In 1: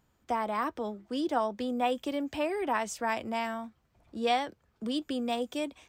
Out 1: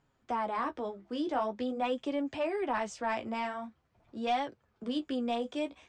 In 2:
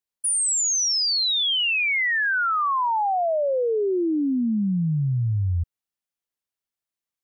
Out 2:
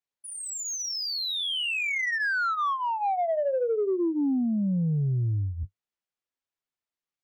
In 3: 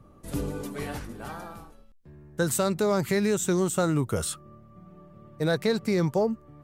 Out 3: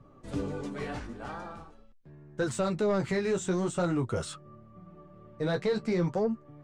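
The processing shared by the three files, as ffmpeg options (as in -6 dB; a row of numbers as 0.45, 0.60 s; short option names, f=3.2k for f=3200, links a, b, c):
-filter_complex "[0:a]flanger=delay=7.1:depth=9.9:regen=-27:speed=0.46:shape=sinusoidal,asoftclip=type=tanh:threshold=-21dB,lowpass=f=8.6k:w=0.5412,lowpass=f=8.6k:w=1.3066,asplit=2[a][b];[b]highpass=f=720:p=1,volume=8dB,asoftclip=type=tanh:threshold=-21dB[c];[a][c]amix=inputs=2:normalize=0,lowpass=f=3.6k:p=1,volume=-6dB,lowshelf=f=490:g=7.5,volume=-1.5dB"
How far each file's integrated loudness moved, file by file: -2.0, -5.5, -4.5 LU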